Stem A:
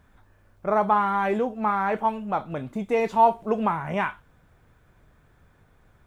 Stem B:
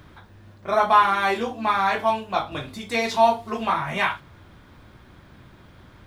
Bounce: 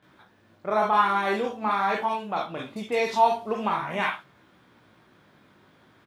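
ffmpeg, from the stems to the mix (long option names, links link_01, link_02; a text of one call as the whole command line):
ffmpeg -i stem1.wav -i stem2.wav -filter_complex "[0:a]lowpass=frequency=3500:width_type=q:width=1.8,volume=-4dB[link_01];[1:a]flanger=delay=15.5:depth=4.6:speed=0.46,adelay=26,volume=-3.5dB[link_02];[link_01][link_02]amix=inputs=2:normalize=0,highpass=180" out.wav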